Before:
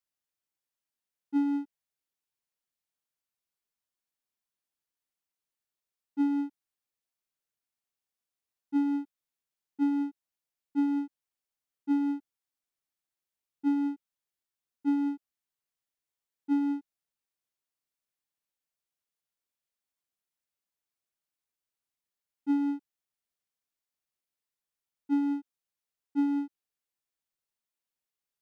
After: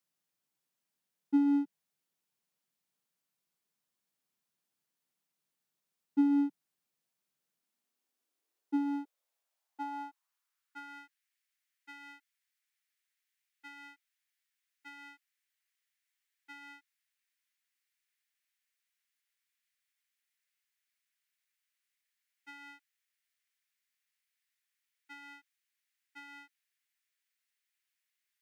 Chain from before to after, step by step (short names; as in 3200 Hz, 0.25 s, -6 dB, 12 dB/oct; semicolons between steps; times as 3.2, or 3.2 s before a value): compressor 6:1, threshold -30 dBFS, peak gain reduction 7.5 dB; high-pass sweep 160 Hz -> 1900 Hz, 7.29–11.2; gain +3.5 dB